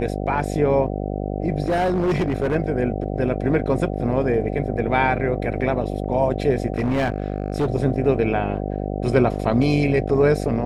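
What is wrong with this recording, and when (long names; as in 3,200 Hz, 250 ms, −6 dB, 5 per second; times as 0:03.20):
mains buzz 50 Hz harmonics 15 −26 dBFS
0:01.64–0:02.56: clipping −16.5 dBFS
0:06.72–0:07.66: clipping −16.5 dBFS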